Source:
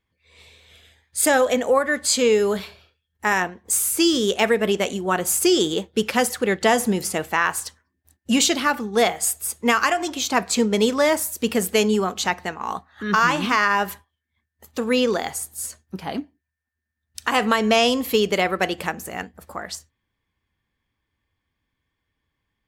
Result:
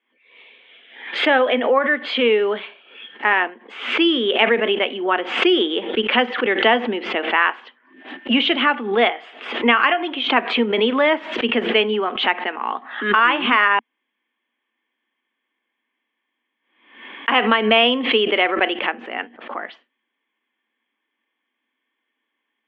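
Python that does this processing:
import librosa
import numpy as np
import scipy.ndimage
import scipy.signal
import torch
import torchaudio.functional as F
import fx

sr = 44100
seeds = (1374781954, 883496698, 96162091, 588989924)

y = fx.edit(x, sr, fx.room_tone_fill(start_s=13.79, length_s=3.49), tone=tone)
y = scipy.signal.sosfilt(scipy.signal.cheby1(5, 1.0, [230.0, 3200.0], 'bandpass', fs=sr, output='sos'), y)
y = fx.high_shelf(y, sr, hz=2100.0, db=9.0)
y = fx.pre_swell(y, sr, db_per_s=87.0)
y = y * 10.0 ** (1.0 / 20.0)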